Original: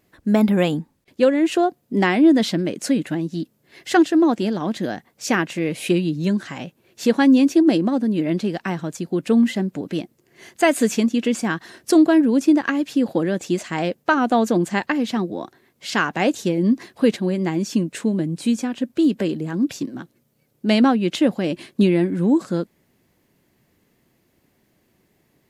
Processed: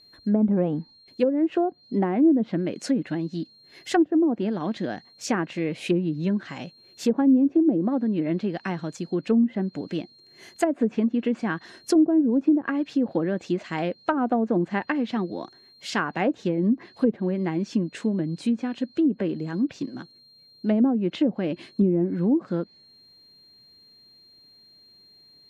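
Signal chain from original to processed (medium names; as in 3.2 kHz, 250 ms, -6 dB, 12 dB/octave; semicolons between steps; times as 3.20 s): whistle 4.2 kHz -48 dBFS; low-pass that closes with the level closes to 480 Hz, closed at -12 dBFS; trim -4 dB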